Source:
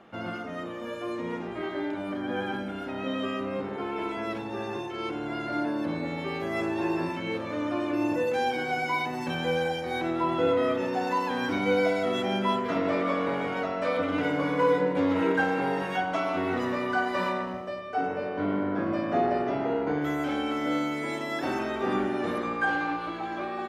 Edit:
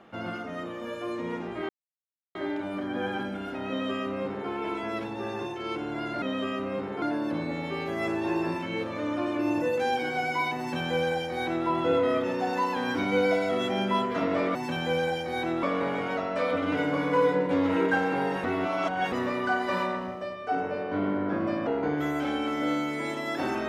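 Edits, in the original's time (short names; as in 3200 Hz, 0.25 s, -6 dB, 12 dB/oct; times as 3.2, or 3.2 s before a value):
1.69 insert silence 0.66 s
3.03–3.83 copy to 5.56
9.13–10.21 copy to 13.09
15.9–16.58 reverse
19.13–19.71 cut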